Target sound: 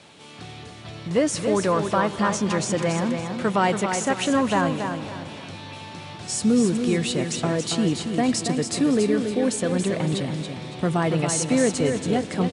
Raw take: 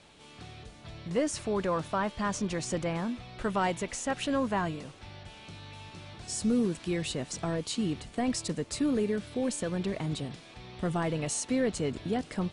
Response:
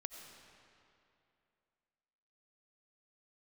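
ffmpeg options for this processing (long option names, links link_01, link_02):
-filter_complex "[0:a]highpass=frequency=91:width=0.5412,highpass=frequency=91:width=1.3066,aecho=1:1:280|560|840|1120:0.473|0.161|0.0547|0.0186,asplit=2[link_01][link_02];[1:a]atrim=start_sample=2205,asetrate=26460,aresample=44100[link_03];[link_02][link_03]afir=irnorm=-1:irlink=0,volume=-9dB[link_04];[link_01][link_04]amix=inputs=2:normalize=0,volume=5.5dB"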